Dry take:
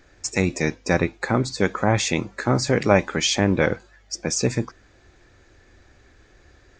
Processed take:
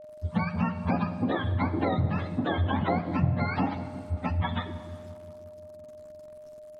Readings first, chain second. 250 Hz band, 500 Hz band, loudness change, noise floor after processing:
−4.5 dB, −11.0 dB, −6.5 dB, −46 dBFS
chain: frequency axis turned over on the octave scale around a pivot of 650 Hz
downward compressor, threshold −23 dBFS, peak gain reduction 11.5 dB
dense smooth reverb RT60 2.2 s, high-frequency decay 0.75×, DRR 11 dB
centre clipping without the shift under −48.5 dBFS
delay with a low-pass on its return 178 ms, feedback 69%, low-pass 560 Hz, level −11 dB
steady tone 610 Hz −43 dBFS
treble cut that deepens with the level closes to 2,600 Hz, closed at −22 dBFS
tilt shelving filter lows +4 dB, about 1,300 Hz
level −3 dB

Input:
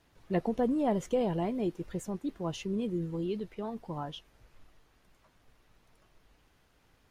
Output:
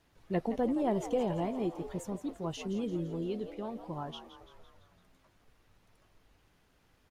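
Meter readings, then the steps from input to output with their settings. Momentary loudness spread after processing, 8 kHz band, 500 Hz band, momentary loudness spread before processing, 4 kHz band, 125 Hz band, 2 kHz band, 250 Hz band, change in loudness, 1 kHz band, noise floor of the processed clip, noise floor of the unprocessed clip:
10 LU, −1.5 dB, −1.5 dB, 10 LU, −1.5 dB, −2.0 dB, −1.5 dB, −2.0 dB, −1.5 dB, −1.0 dB, −69 dBFS, −67 dBFS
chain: echo with shifted repeats 169 ms, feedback 56%, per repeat +85 Hz, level −12 dB
level −2 dB

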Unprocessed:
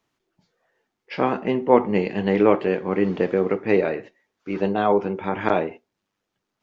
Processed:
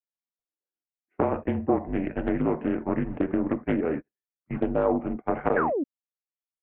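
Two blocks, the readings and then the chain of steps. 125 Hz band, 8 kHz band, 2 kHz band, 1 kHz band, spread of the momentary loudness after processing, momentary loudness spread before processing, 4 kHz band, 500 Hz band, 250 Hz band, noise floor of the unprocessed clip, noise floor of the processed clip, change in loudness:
−3.0 dB, can't be measured, −6.0 dB, −6.0 dB, 6 LU, 10 LU, below −15 dB, −7.0 dB, −2.5 dB, −81 dBFS, below −85 dBFS, −5.5 dB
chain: noise gate −27 dBFS, range −36 dB
single-sideband voice off tune −160 Hz 180–2,600 Hz
downward compressor 16 to 1, threshold −21 dBFS, peak gain reduction 13 dB
parametric band 490 Hz +10 dB 2.5 octaves
sound drawn into the spectrogram fall, 0:05.56–0:05.84, 250–1,800 Hz −20 dBFS
highs frequency-modulated by the lows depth 0.35 ms
level −6 dB

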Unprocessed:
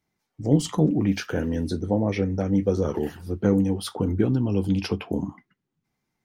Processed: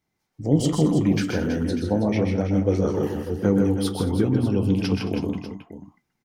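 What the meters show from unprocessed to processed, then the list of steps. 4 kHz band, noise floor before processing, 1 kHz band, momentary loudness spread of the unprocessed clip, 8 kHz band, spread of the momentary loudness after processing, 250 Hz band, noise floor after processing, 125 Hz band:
+2.0 dB, −81 dBFS, +2.0 dB, 8 LU, +2.0 dB, 7 LU, +2.0 dB, −78 dBFS, +2.0 dB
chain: multi-tap delay 127/155/218/324/594 ms −6.5/−7.5/−18/−10.5/−13.5 dB

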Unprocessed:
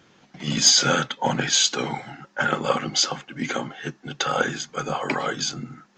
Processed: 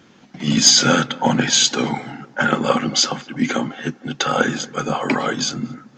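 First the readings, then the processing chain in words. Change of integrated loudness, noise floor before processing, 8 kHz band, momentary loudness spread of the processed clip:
+4.5 dB, −59 dBFS, +4.0 dB, 14 LU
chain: parametric band 240 Hz +7 dB 0.69 octaves
on a send: feedback echo with a low-pass in the loop 228 ms, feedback 39%, low-pass 1,400 Hz, level −19 dB
on the sum: level +4 dB

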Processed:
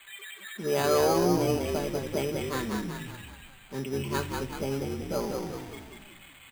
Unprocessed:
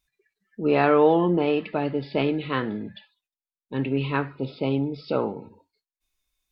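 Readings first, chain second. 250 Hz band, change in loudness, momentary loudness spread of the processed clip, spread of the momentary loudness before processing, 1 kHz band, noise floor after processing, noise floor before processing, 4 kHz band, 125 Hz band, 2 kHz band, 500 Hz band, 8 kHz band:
−6.0 dB, −5.0 dB, 21 LU, 14 LU, −5.0 dB, −52 dBFS, below −85 dBFS, +1.0 dB, −4.0 dB, −5.0 dB, −4.5 dB, can't be measured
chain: spike at every zero crossing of −19 dBFS
comb filter 5.1 ms, depth 61%
echo with shifted repeats 190 ms, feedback 53%, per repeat −48 Hz, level −3.5 dB
bad sample-rate conversion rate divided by 8×, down filtered, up hold
level −7.5 dB

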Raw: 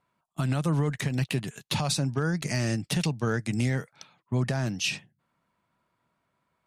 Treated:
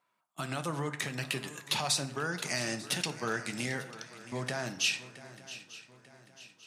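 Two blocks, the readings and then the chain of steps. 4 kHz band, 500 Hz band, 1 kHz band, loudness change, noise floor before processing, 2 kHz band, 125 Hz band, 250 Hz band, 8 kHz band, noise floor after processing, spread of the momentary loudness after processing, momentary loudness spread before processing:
+0.5 dB, −4.5 dB, −1.0 dB, −5.0 dB, −77 dBFS, 0.0 dB, −13.5 dB, −10.0 dB, +0.5 dB, −78 dBFS, 19 LU, 6 LU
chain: high-pass filter 750 Hz 6 dB per octave
on a send: feedback echo with a long and a short gap by turns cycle 893 ms, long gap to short 3 to 1, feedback 42%, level −16 dB
on the sum: dense smooth reverb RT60 0.92 s, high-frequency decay 0.5×, DRR 9 dB

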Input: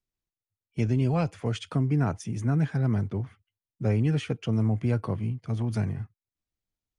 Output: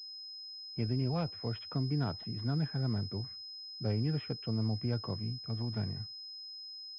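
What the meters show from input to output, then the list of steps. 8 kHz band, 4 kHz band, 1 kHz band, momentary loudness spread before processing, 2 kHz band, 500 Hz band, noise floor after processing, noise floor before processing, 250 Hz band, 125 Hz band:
can't be measured, +6.5 dB, −8.0 dB, 8 LU, −10.0 dB, −8.0 dB, −47 dBFS, below −85 dBFS, −8.0 dB, −8.0 dB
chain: switching amplifier with a slow clock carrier 5,100 Hz
level −8 dB

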